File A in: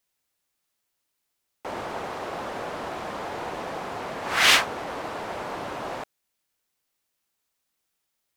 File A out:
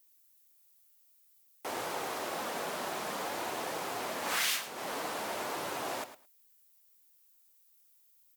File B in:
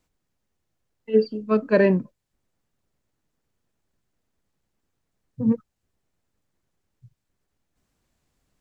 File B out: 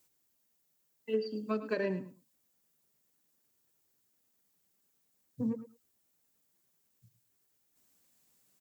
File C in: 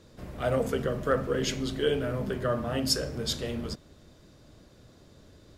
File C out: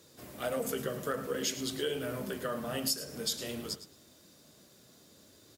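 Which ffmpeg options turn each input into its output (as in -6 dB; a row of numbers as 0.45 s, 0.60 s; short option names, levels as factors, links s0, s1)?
-af "highpass=140,aemphasis=mode=production:type=75fm,acompressor=threshold=0.0562:ratio=8,flanger=delay=2:depth=3.4:regen=-65:speed=0.53:shape=triangular,aecho=1:1:108|216:0.224|0.0336"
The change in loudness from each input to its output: -8.5 LU, -13.5 LU, -5.5 LU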